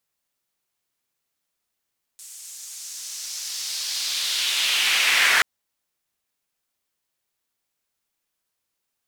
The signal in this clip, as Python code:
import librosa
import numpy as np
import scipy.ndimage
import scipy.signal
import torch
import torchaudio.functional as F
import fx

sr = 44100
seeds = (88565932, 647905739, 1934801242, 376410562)

y = fx.riser_noise(sr, seeds[0], length_s=3.23, colour='white', kind='bandpass', start_hz=7800.0, end_hz=1700.0, q=2.0, swell_db=30.0, law='linear')